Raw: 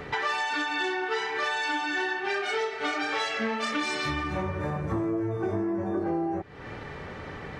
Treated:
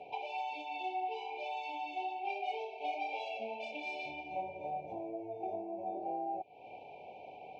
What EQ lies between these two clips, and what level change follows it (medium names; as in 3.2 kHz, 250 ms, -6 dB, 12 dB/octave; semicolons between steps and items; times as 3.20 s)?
vowel filter a; brick-wall FIR band-stop 990–2200 Hz; low-pass 7.7 kHz; +3.0 dB